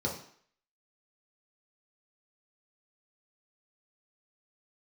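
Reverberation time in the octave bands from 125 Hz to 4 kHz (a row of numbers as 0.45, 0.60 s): 0.45, 0.50, 0.55, 0.60, 0.60, 0.55 s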